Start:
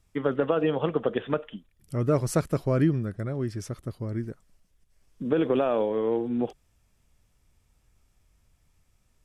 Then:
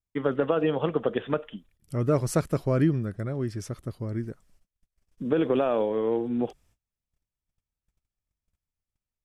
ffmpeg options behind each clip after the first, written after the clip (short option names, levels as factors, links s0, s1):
-af "agate=range=0.0562:threshold=0.00112:ratio=16:detection=peak"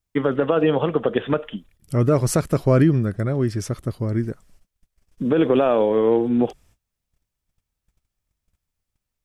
-af "alimiter=limit=0.15:level=0:latency=1:release=121,volume=2.66"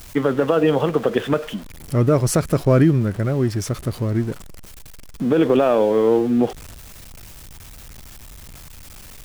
-af "aeval=exprs='val(0)+0.5*0.0211*sgn(val(0))':c=same,volume=1.12"